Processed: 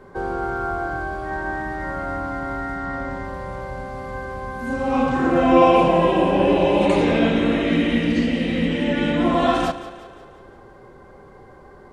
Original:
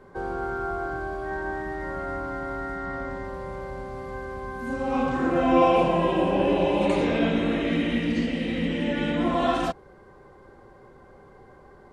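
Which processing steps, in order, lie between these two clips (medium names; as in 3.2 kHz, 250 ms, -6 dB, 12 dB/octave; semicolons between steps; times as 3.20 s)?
two-band feedback delay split 360 Hz, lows 100 ms, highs 177 ms, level -14 dB; trim +5 dB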